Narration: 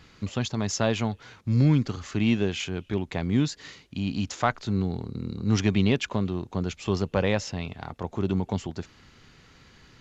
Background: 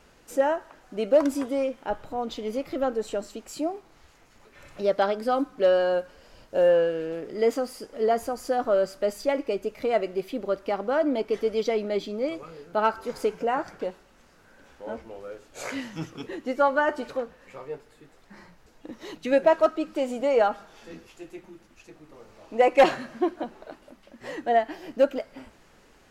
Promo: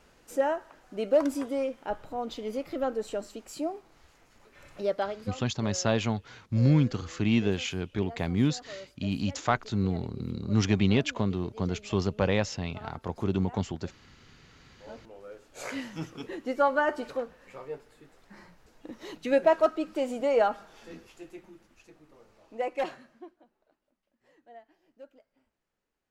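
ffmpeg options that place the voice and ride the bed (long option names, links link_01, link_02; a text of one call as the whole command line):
ffmpeg -i stem1.wav -i stem2.wav -filter_complex "[0:a]adelay=5050,volume=-1.5dB[link_01];[1:a]volume=15.5dB,afade=type=out:start_time=4.79:duration=0.59:silence=0.125893,afade=type=in:start_time=14.46:duration=1.34:silence=0.112202,afade=type=out:start_time=20.96:duration=2.42:silence=0.0501187[link_02];[link_01][link_02]amix=inputs=2:normalize=0" out.wav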